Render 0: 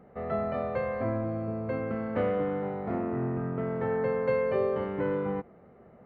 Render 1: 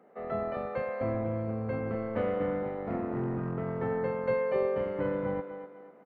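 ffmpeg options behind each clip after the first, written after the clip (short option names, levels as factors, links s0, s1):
-filter_complex "[0:a]aecho=1:1:246|492|738|984:0.376|0.143|0.0543|0.0206,acrossover=split=220[s0][s1];[s0]acrusher=bits=5:mix=0:aa=0.5[s2];[s2][s1]amix=inputs=2:normalize=0,volume=0.75"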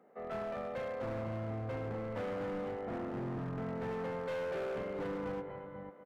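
-filter_complex "[0:a]asplit=2[s0][s1];[s1]aecho=0:1:92|153|420|493:0.15|0.126|0.141|0.355[s2];[s0][s2]amix=inputs=2:normalize=0,asoftclip=type=hard:threshold=0.0299,volume=0.596"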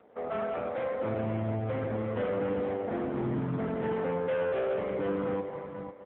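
-af "acrusher=bits=5:mode=log:mix=0:aa=0.000001,volume=2.66" -ar 8000 -c:a libopencore_amrnb -b:a 5900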